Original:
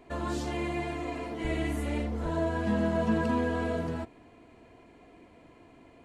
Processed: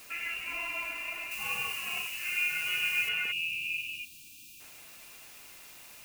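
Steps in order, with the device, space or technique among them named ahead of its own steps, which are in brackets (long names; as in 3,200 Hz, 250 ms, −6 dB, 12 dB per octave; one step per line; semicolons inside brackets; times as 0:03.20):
scrambled radio voice (band-pass filter 390–2,700 Hz; voice inversion scrambler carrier 3,100 Hz; white noise bed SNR 15 dB)
0:01.31–0:03.09: bass and treble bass +1 dB, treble +9 dB
0:03.31–0:04.60: time-frequency box erased 350–2,300 Hz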